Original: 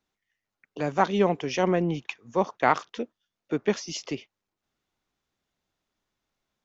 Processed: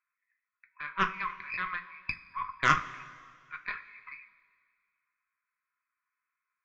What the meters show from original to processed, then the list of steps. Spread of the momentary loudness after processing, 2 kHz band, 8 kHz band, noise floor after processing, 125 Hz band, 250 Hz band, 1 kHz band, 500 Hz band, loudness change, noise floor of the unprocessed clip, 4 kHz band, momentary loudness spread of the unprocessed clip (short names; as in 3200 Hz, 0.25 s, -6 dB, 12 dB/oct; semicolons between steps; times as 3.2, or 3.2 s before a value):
20 LU, +2.0 dB, n/a, under -85 dBFS, -11.5 dB, -17.5 dB, -4.5 dB, -22.5 dB, -5.5 dB, under -85 dBFS, -5.0 dB, 13 LU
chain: FFT band-pass 960–2600 Hz; added harmonics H 4 -14 dB, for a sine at -10.5 dBFS; two-slope reverb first 0.23 s, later 2 s, from -18 dB, DRR 5 dB